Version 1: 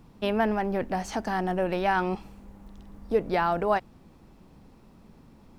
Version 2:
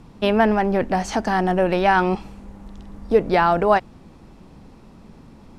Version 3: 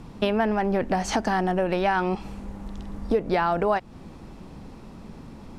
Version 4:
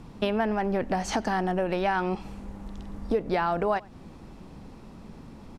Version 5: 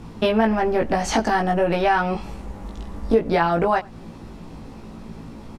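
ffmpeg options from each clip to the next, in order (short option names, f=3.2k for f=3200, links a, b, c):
-af "lowpass=10k,volume=8dB"
-af "acompressor=threshold=-24dB:ratio=4,volume=3dB"
-filter_complex "[0:a]asplit=2[a][b];[b]adelay=93.29,volume=-25dB,highshelf=f=4k:g=-2.1[c];[a][c]amix=inputs=2:normalize=0,volume=-3dB"
-filter_complex "[0:a]asplit=2[a][b];[b]adelay=18,volume=-2dB[c];[a][c]amix=inputs=2:normalize=0,volume=5dB"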